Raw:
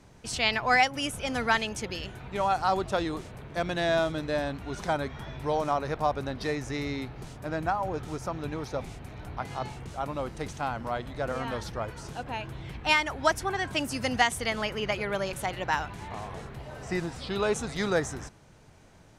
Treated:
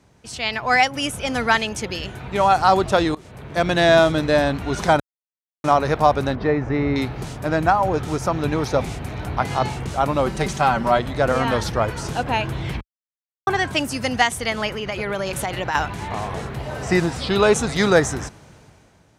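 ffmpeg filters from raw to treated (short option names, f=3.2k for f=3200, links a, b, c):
-filter_complex "[0:a]asettb=1/sr,asplit=3[a][b][c];[a]atrim=end=6.354[d];[b]atrim=start=6.35:end=6.96,asetpts=PTS-STARTPTS,afade=t=in:d=0.004:c=qsin,afade=t=out:st=0.606:d=0.004:c=qsin,lowpass=1.6k[e];[c]atrim=start=6.956[f];[d][e]acrossfade=d=0.004:c1=hsin:c2=qsin[g];[g][f]acrossfade=d=0.004:c1=qsin:c2=hsin,asettb=1/sr,asplit=3[h][i][j];[h]atrim=end=10.264[k];[i]atrim=start=10.26:end=10.99,asetpts=PTS-STARTPTS,afade=t=in:d=0.004:c=qsin,afade=t=out:st=0.726:d=0.004:c=qsin,aecho=1:1:5.2:0.65,atrim=end_sample=32193[l];[j]atrim=start=10.986[m];[k][l]acrossfade=d=0.004:c1=hsin:c2=qsin[n];[n][m]acrossfade=d=0.004:c1=qsin:c2=hsin,asettb=1/sr,asplit=3[o][p][q];[o]atrim=end=14.724[r];[p]atrim=start=14.72:end=15.75,asetpts=PTS-STARTPTS,afade=t=in:d=0.004:c=qsin,afade=t=out:st=1.026:d=0.004:c=qsin,acompressor=threshold=-31dB:ratio=6:attack=3.2:release=140:knee=1:detection=peak[s];[q]atrim=start=15.746[t];[r][s]acrossfade=d=0.004:c1=hsin:c2=qsin[u];[u][t]acrossfade=d=0.004:c1=qsin:c2=hsin,asplit=6[v][w][x][y][z][aa];[v]atrim=end=3.15,asetpts=PTS-STARTPTS,afade=t=out:st=3.146:d=0.004:c=hsin:silence=0.0891251[ab];[w]atrim=start=3.15:end=5,asetpts=PTS-STARTPTS,afade=t=in:d=0.73:c=qsin:silence=0.0891251,afade=t=out:st=1.846:d=0.004:c=hsin[ac];[x]atrim=start=5:end=5.64,asetpts=PTS-STARTPTS,volume=0[ad];[y]atrim=start=5.64:end=12.81,asetpts=PTS-STARTPTS,afade=t=in:d=0.004:c=hsin,afade=t=out:st=7.166:d=0.004:c=hsin[ae];[z]atrim=start=12.81:end=13.47,asetpts=PTS-STARTPTS,volume=0[af];[aa]atrim=start=13.47,asetpts=PTS-STARTPTS,afade=t=in:d=0.004:c=hsin[ag];[ab][ac][ad][ae][af][ag]concat=n=6:v=0:a=1,highpass=44,dynaudnorm=f=120:g=11:m=14.5dB,volume=-1dB"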